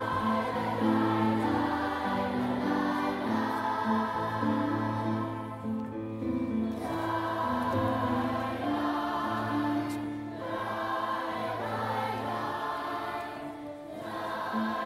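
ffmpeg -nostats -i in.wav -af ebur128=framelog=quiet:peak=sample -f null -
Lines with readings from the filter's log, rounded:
Integrated loudness:
  I:         -31.2 LUFS
  Threshold: -41.2 LUFS
Loudness range:
  LRA:         4.2 LU
  Threshold: -51.3 LUFS
  LRA low:   -33.4 LUFS
  LRA high:  -29.2 LUFS
Sample peak:
  Peak:      -14.9 dBFS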